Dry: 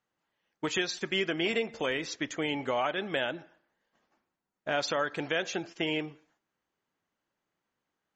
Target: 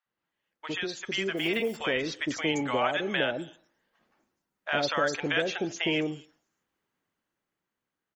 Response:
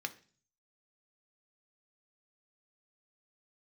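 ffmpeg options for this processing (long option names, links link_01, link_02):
-filter_complex "[0:a]dynaudnorm=framelen=260:gausssize=11:maxgain=7dB,asplit=3[link_01][link_02][link_03];[link_01]afade=type=out:start_time=1.08:duration=0.02[link_04];[link_02]acrusher=bits=6:mode=log:mix=0:aa=0.000001,afade=type=in:start_time=1.08:duration=0.02,afade=type=out:start_time=1.5:duration=0.02[link_05];[link_03]afade=type=in:start_time=1.5:duration=0.02[link_06];[link_04][link_05][link_06]amix=inputs=3:normalize=0,acrossover=split=730|5500[link_07][link_08][link_09];[link_07]adelay=60[link_10];[link_09]adelay=250[link_11];[link_10][link_08][link_11]amix=inputs=3:normalize=0,volume=-2.5dB"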